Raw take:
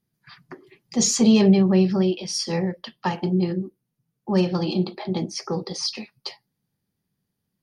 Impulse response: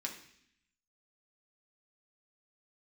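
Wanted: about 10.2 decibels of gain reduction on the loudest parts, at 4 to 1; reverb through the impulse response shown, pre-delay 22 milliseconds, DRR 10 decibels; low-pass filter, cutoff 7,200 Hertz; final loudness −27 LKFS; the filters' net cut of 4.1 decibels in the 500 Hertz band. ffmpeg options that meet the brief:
-filter_complex "[0:a]lowpass=7200,equalizer=frequency=500:width_type=o:gain=-6,acompressor=threshold=-25dB:ratio=4,asplit=2[link_01][link_02];[1:a]atrim=start_sample=2205,adelay=22[link_03];[link_02][link_03]afir=irnorm=-1:irlink=0,volume=-10dB[link_04];[link_01][link_04]amix=inputs=2:normalize=0,volume=2dB"

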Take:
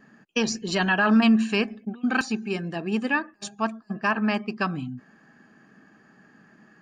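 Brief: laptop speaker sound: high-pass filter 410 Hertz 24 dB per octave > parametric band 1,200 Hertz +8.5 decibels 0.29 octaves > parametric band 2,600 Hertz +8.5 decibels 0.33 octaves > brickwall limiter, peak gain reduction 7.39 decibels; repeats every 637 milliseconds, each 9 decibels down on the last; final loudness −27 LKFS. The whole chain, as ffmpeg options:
ffmpeg -i in.wav -af "highpass=frequency=410:width=0.5412,highpass=frequency=410:width=1.3066,equalizer=frequency=1200:width_type=o:width=0.29:gain=8.5,equalizer=frequency=2600:width_type=o:width=0.33:gain=8.5,aecho=1:1:637|1274|1911|2548:0.355|0.124|0.0435|0.0152,volume=0.5dB,alimiter=limit=-14dB:level=0:latency=1" out.wav

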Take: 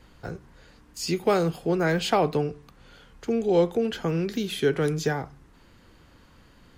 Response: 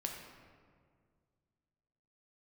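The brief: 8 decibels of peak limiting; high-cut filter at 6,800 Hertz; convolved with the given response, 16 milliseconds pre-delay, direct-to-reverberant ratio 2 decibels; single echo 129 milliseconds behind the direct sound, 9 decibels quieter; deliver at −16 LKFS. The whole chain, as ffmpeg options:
-filter_complex "[0:a]lowpass=6800,alimiter=limit=-18dB:level=0:latency=1,aecho=1:1:129:0.355,asplit=2[link_01][link_02];[1:a]atrim=start_sample=2205,adelay=16[link_03];[link_02][link_03]afir=irnorm=-1:irlink=0,volume=-2dB[link_04];[link_01][link_04]amix=inputs=2:normalize=0,volume=10.5dB"

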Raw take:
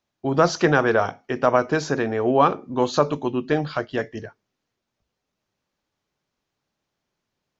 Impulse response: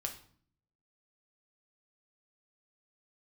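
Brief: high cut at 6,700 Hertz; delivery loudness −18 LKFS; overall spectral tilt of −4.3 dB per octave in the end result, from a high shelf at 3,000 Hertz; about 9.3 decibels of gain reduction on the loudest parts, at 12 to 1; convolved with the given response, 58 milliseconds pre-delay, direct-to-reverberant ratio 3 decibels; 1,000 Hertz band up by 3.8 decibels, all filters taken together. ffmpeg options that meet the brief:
-filter_complex "[0:a]lowpass=6700,equalizer=frequency=1000:width_type=o:gain=4,highshelf=frequency=3000:gain=6.5,acompressor=threshold=-18dB:ratio=12,asplit=2[link_01][link_02];[1:a]atrim=start_sample=2205,adelay=58[link_03];[link_02][link_03]afir=irnorm=-1:irlink=0,volume=-3dB[link_04];[link_01][link_04]amix=inputs=2:normalize=0,volume=5.5dB"

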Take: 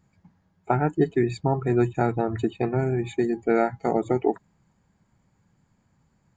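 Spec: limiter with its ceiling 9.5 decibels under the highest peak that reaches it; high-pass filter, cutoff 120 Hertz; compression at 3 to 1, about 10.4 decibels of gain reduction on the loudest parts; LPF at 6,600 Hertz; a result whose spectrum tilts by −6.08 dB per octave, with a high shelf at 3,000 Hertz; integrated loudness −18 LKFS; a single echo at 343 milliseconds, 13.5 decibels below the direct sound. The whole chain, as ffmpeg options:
ffmpeg -i in.wav -af "highpass=120,lowpass=6600,highshelf=frequency=3000:gain=8,acompressor=threshold=-31dB:ratio=3,alimiter=limit=-24dB:level=0:latency=1,aecho=1:1:343:0.211,volume=18dB" out.wav

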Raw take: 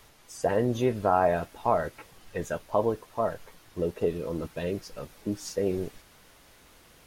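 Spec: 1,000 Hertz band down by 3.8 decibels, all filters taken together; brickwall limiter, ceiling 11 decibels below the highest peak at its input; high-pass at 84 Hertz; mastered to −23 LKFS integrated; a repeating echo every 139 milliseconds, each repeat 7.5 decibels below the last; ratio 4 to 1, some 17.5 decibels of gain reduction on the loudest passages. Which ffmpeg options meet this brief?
ffmpeg -i in.wav -af "highpass=84,equalizer=frequency=1000:width_type=o:gain=-5.5,acompressor=threshold=-43dB:ratio=4,alimiter=level_in=13dB:limit=-24dB:level=0:latency=1,volume=-13dB,aecho=1:1:139|278|417|556|695:0.422|0.177|0.0744|0.0312|0.0131,volume=26dB" out.wav

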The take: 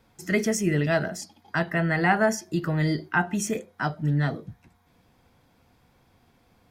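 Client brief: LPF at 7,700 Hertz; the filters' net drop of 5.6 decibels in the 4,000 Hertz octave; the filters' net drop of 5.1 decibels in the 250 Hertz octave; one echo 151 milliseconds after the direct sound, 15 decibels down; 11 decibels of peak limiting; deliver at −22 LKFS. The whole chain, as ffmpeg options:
ffmpeg -i in.wav -af "lowpass=7700,equalizer=frequency=250:width_type=o:gain=-8.5,equalizer=frequency=4000:width_type=o:gain=-8,alimiter=limit=-21.5dB:level=0:latency=1,aecho=1:1:151:0.178,volume=9.5dB" out.wav

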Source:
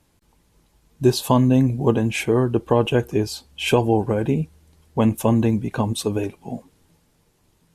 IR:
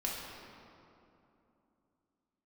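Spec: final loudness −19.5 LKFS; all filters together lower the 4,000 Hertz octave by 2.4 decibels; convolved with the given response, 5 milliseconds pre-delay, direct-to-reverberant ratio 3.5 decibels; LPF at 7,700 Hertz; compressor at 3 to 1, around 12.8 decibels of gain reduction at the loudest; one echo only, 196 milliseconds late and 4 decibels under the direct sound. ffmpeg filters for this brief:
-filter_complex "[0:a]lowpass=7700,equalizer=frequency=4000:width_type=o:gain=-3,acompressor=threshold=-30dB:ratio=3,aecho=1:1:196:0.631,asplit=2[link_01][link_02];[1:a]atrim=start_sample=2205,adelay=5[link_03];[link_02][link_03]afir=irnorm=-1:irlink=0,volume=-7.5dB[link_04];[link_01][link_04]amix=inputs=2:normalize=0,volume=9.5dB"

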